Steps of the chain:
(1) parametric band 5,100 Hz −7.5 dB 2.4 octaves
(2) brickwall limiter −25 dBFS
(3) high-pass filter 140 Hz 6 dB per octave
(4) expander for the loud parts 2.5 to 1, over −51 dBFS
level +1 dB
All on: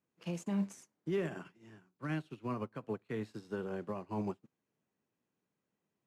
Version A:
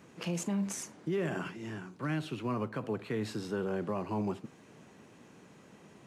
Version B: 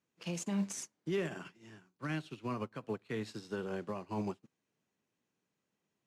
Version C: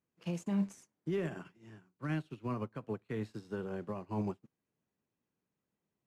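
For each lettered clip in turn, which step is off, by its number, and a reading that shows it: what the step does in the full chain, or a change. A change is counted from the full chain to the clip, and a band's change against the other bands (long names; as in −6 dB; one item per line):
4, 4 kHz band +5.0 dB
1, 4 kHz band +6.5 dB
3, 125 Hz band +3.0 dB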